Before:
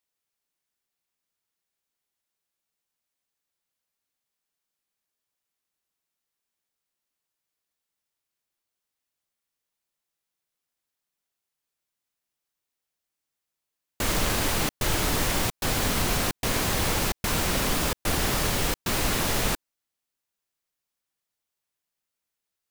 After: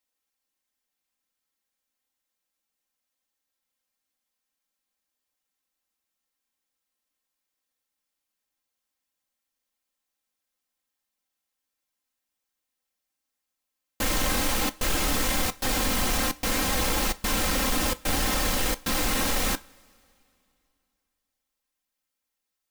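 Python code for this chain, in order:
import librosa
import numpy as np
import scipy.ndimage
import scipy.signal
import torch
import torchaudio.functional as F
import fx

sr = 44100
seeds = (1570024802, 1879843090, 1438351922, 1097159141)

y = x + 0.97 * np.pad(x, (int(3.8 * sr / 1000.0), 0))[:len(x)]
y = 10.0 ** (-17.0 / 20.0) * (np.abs((y / 10.0 ** (-17.0 / 20.0) + 3.0) % 4.0 - 2.0) - 1.0)
y = fx.rev_double_slope(y, sr, seeds[0], early_s=0.25, late_s=2.7, knee_db=-22, drr_db=13.5)
y = y * 10.0 ** (-2.0 / 20.0)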